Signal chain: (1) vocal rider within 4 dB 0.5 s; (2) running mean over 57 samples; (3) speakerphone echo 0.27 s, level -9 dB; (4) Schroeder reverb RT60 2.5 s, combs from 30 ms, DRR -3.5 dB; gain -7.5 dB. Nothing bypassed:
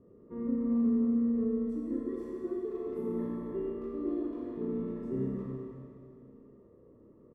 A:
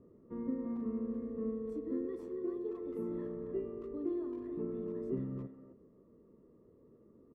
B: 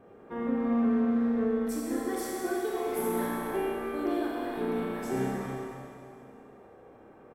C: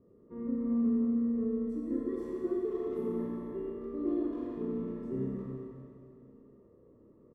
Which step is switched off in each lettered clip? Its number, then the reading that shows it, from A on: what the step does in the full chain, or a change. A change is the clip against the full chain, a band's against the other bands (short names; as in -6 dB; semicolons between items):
4, momentary loudness spread change -8 LU; 2, 1 kHz band +15.5 dB; 1, 125 Hz band -1.5 dB